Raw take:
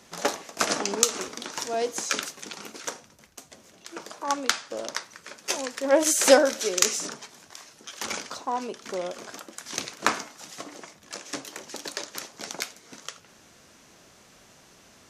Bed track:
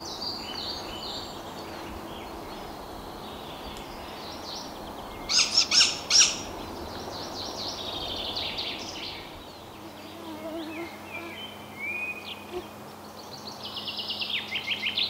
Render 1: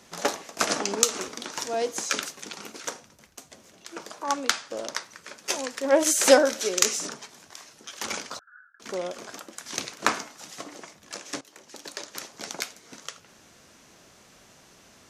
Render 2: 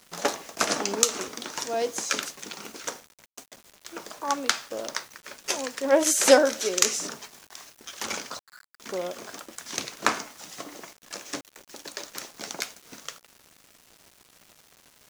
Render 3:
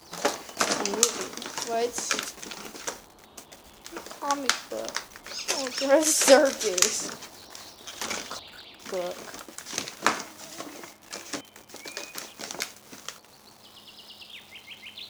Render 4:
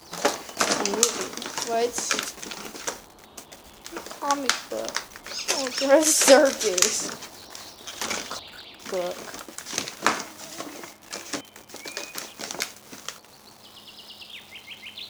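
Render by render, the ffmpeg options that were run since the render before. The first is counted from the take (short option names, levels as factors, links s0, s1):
-filter_complex "[0:a]asettb=1/sr,asplit=3[s0][s1][s2];[s0]atrim=end=8.394[s3];[s1]atrim=start=8.39:end=8.8,asetpts=PTS-STARTPTS,afade=t=in:d=0.004:c=qsin,afade=t=out:st=0.406:d=0.004:c=qsin,asuperpass=centerf=1500:order=12:qfactor=3.8[s4];[s2]atrim=start=8.796[s5];[s3][s4]acrossfade=d=0.004:c1=hsin:c2=qsin[s6];[s6][s5]acrossfade=d=0.004:c1=qsin:c2=hsin,asplit=2[s7][s8];[s7]atrim=end=11.41,asetpts=PTS-STARTPTS,afade=t=out:st=11.406:d=0.004:c=hsin:silence=0.16788[s9];[s8]atrim=start=11.41,asetpts=PTS-STARTPTS,afade=t=in:d=0.91:silence=0.16788[s10];[s9][s10]concat=n=2:v=0:a=1"
-af "acrusher=bits=7:mix=0:aa=0.000001"
-filter_complex "[1:a]volume=0.188[s0];[0:a][s0]amix=inputs=2:normalize=0"
-af "volume=1.41,alimiter=limit=0.708:level=0:latency=1"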